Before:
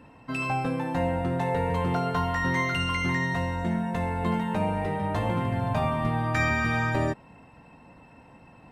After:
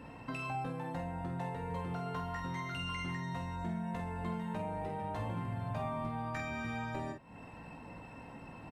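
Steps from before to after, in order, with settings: compression 4:1, threshold -41 dBFS, peak gain reduction 16.5 dB; on a send: early reflections 18 ms -9 dB, 47 ms -6.5 dB; on the sum: trim +1 dB

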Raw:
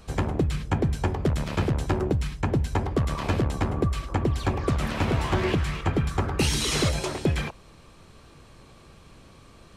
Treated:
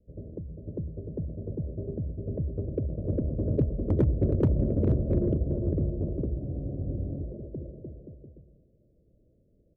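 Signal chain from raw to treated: CVSD coder 32 kbps; Doppler pass-by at 4.21 s, 23 m/s, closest 17 m; steep low-pass 630 Hz 96 dB/octave; on a send: bouncing-ball echo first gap 400 ms, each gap 0.75×, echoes 5; on the sum: Chebyshev shaper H 8 -42 dB, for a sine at -16.5 dBFS; spectral freeze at 6.38 s, 0.85 s; trim +1 dB

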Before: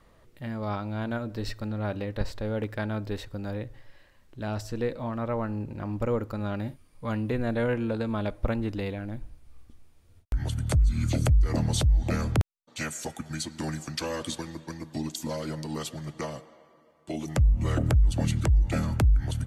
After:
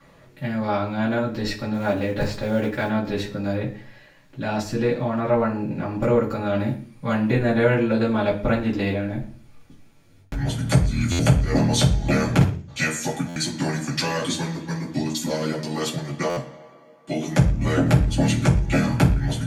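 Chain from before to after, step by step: 1.73–2.88 s: short-mantissa float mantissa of 4-bit; reverberation RT60 0.40 s, pre-delay 3 ms, DRR -8 dB; buffer glitch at 11.11/13.28/16.29 s, samples 512, times 6; trim -2 dB

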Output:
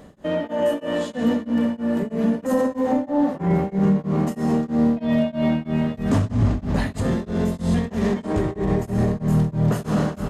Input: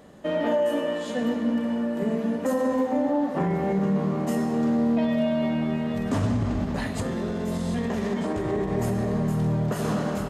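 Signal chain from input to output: bass shelf 170 Hz +8 dB; de-hum 118.4 Hz, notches 37; in parallel at +1.5 dB: peak limiter -22 dBFS, peak gain reduction 11 dB; on the sum: level rider gain up to 3 dB; tremolo of two beating tones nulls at 3.1 Hz; trim -2.5 dB

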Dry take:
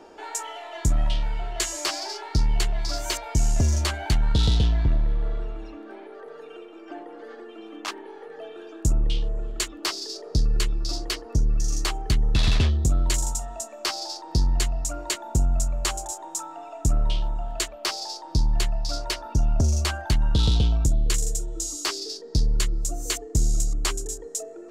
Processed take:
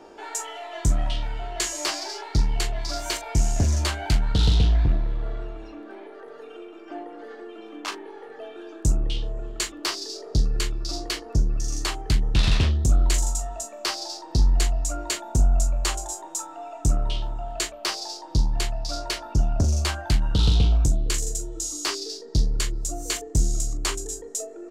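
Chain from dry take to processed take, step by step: on a send: early reflections 20 ms -10 dB, 40 ms -10 dB; on the sum: loudspeaker Doppler distortion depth 0.21 ms

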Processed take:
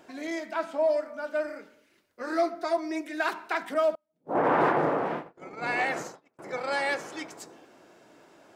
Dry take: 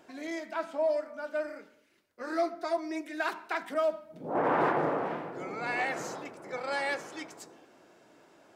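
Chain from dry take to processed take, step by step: 3.95–6.39 s: gate -36 dBFS, range -33 dB; trim +3.5 dB

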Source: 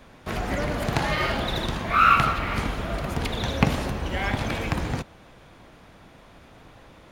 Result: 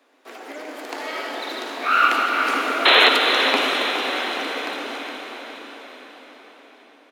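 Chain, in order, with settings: Doppler pass-by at 2.86 s, 14 m/s, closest 8.3 m; Chebyshev high-pass 270 Hz, order 5; painted sound noise, 2.85–3.09 s, 360–4200 Hz -19 dBFS; feedback delay 415 ms, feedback 55%, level -10.5 dB; on a send at -1.5 dB: reverberation RT60 5.8 s, pre-delay 51 ms; on the sum: trim +5.5 dB

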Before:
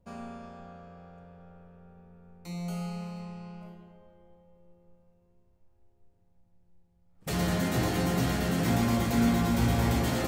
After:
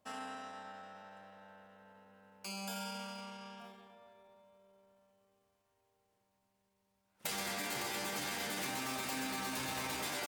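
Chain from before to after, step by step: high-pass 1.4 kHz 6 dB/octave; compression 6:1, threshold -43 dBFS, peak gain reduction 10 dB; pitch shift +2 st; trim +6.5 dB

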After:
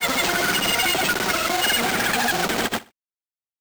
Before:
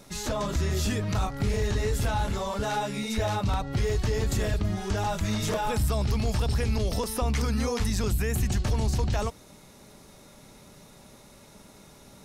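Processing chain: one-sided wavefolder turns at -23.5 dBFS; high-pass 380 Hz 6 dB/octave; treble shelf 3.1 kHz -11 dB; in parallel at +2 dB: peak limiter -29.5 dBFS, peak gain reduction 8 dB; on the sum: wide varispeed 3.4×; bit crusher 5-bit; granulator 100 ms, grains 20 per s, pitch spread up and down by 0 st; careless resampling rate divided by 4×, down none, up hold; on a send: feedback delay 62 ms, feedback 31%, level -20 dB; on the sum: trim +8 dB

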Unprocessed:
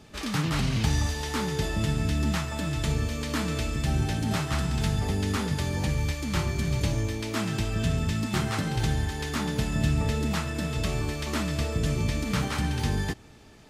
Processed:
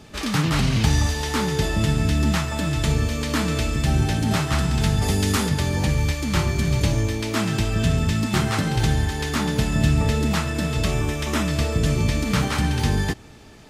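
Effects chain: 5.01–5.48 s: treble shelf 3.7 kHz -> 6.2 kHz +9 dB; 10.91–11.48 s: band-stop 4.4 kHz, Q 8.5; trim +6 dB

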